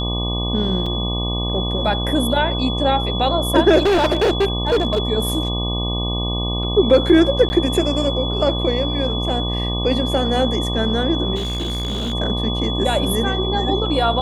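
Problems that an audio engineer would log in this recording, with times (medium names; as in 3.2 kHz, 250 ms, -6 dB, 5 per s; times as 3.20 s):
buzz 60 Hz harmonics 20 -23 dBFS
whine 3.4 kHz -25 dBFS
0.86 s: dropout 4.4 ms
3.79–4.99 s: clipped -12.5 dBFS
7.49–7.50 s: dropout 10 ms
11.35–12.14 s: clipped -20 dBFS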